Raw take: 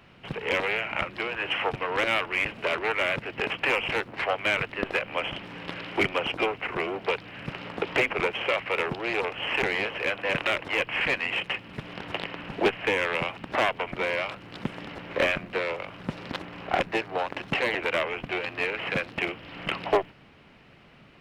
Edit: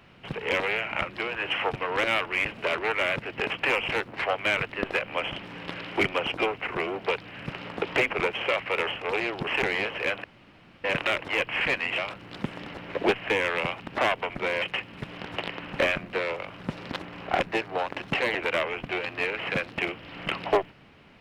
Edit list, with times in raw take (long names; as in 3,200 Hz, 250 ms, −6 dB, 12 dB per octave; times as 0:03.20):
0:08.87–0:09.47: reverse
0:10.24: splice in room tone 0.60 s
0:11.38–0:12.55: swap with 0:14.19–0:15.19